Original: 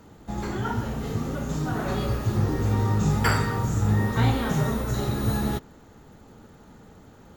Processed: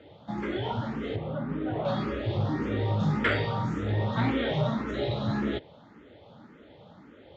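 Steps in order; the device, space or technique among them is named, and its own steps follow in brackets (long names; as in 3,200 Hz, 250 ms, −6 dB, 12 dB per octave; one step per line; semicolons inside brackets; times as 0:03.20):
0:01.16–0:01.85: high-frequency loss of the air 420 metres
barber-pole phaser into a guitar amplifier (frequency shifter mixed with the dry sound +1.8 Hz; soft clipping −17.5 dBFS, distortion −20 dB; loudspeaker in its box 100–4,200 Hz, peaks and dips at 310 Hz +4 dB, 580 Hz +9 dB, 2,100 Hz +5 dB, 3,400 Hz +9 dB)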